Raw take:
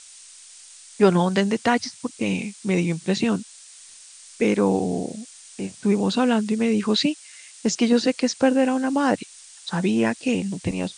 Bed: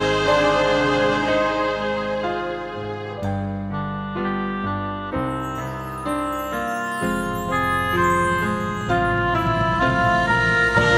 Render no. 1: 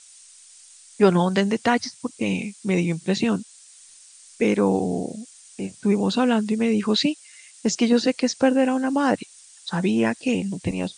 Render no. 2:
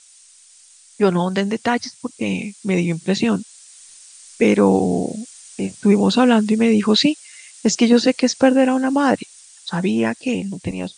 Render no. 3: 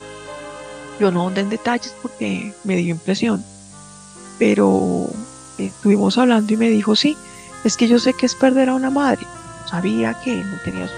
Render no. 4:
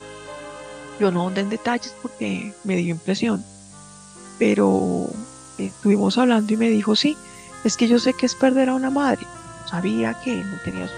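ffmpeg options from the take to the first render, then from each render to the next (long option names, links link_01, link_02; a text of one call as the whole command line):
ffmpeg -i in.wav -af "afftdn=noise_reduction=6:noise_floor=-46" out.wav
ffmpeg -i in.wav -af "dynaudnorm=framelen=920:gausssize=5:maxgain=11.5dB" out.wav
ffmpeg -i in.wav -i bed.wav -filter_complex "[1:a]volume=-16dB[link_01];[0:a][link_01]amix=inputs=2:normalize=0" out.wav
ffmpeg -i in.wav -af "volume=-3dB" out.wav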